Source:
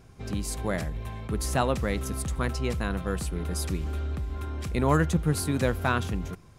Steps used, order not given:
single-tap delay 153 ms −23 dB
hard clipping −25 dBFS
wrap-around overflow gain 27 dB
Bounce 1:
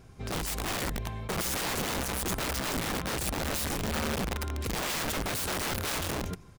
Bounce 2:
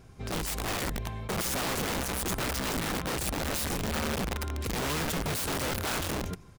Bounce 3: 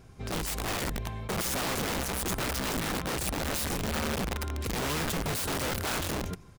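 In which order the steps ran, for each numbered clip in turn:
single-tap delay, then wrap-around overflow, then hard clipping
single-tap delay, then hard clipping, then wrap-around overflow
hard clipping, then single-tap delay, then wrap-around overflow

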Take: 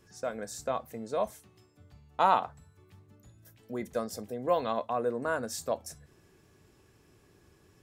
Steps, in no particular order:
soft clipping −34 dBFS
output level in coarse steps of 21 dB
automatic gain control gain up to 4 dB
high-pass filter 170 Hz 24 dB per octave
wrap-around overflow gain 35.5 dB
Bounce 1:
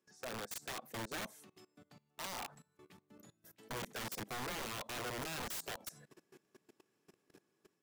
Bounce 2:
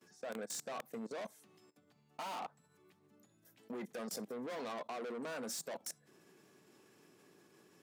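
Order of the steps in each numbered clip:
high-pass filter, then output level in coarse steps, then automatic gain control, then wrap-around overflow, then soft clipping
automatic gain control, then soft clipping, then output level in coarse steps, then wrap-around overflow, then high-pass filter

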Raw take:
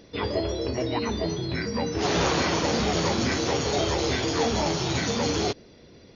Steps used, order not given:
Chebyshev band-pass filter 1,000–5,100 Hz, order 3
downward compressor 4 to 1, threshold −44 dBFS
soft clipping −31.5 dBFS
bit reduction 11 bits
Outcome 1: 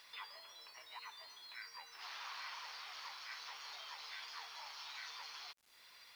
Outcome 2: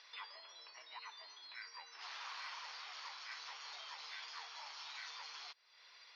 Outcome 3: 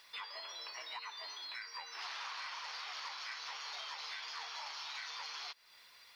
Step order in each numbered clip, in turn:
downward compressor, then Chebyshev band-pass filter, then soft clipping, then bit reduction
bit reduction, then downward compressor, then Chebyshev band-pass filter, then soft clipping
Chebyshev band-pass filter, then bit reduction, then downward compressor, then soft clipping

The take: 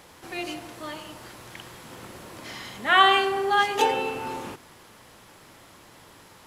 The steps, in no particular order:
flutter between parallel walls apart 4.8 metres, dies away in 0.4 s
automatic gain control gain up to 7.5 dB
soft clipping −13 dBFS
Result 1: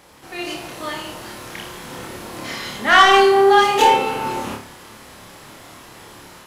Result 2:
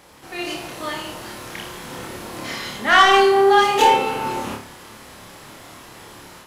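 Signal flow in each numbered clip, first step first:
soft clipping, then automatic gain control, then flutter between parallel walls
soft clipping, then flutter between parallel walls, then automatic gain control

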